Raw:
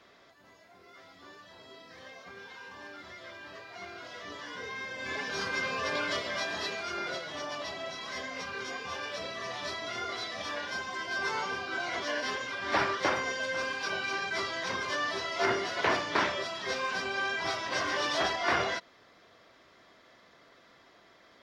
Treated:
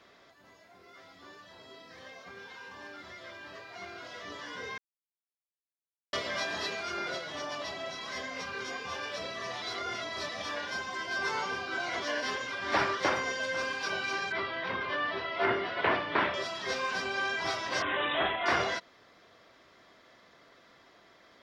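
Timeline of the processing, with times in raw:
4.78–6.13 mute
9.62–10.29 reverse
14.32–16.34 LPF 3400 Hz 24 dB/oct
17.82–18.46 careless resampling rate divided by 6×, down none, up filtered

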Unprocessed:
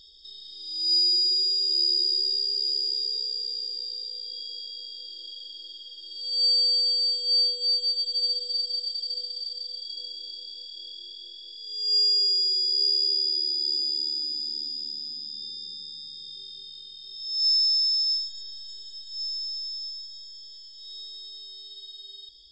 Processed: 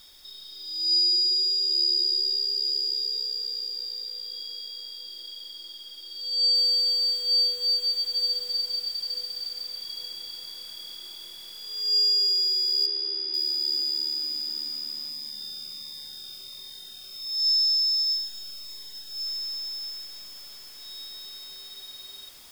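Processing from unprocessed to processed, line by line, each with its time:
6.55 noise floor step -58 dB -51 dB
12.86–13.34 Bessel low-pass 3800 Hz, order 4
15.09–19.26 cascading phaser falling 1.4 Hz

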